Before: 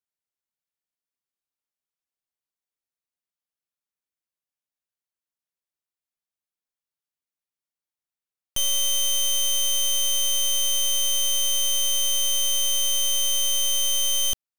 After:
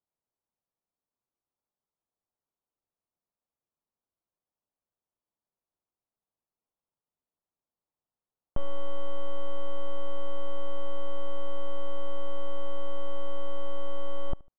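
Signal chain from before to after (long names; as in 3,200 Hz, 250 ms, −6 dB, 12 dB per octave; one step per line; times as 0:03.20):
low-pass filter 1,100 Hz 24 dB per octave
on a send: repeating echo 74 ms, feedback 35%, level −23.5 dB
on the sum: level +6.5 dB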